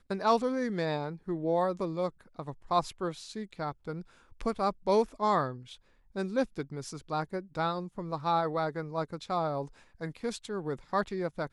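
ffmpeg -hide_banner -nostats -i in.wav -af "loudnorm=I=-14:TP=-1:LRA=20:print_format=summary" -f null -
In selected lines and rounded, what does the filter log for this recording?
Input Integrated:    -32.9 LUFS
Input True Peak:     -12.8 dBTP
Input LRA:             2.6 LU
Input Threshold:     -43.2 LUFS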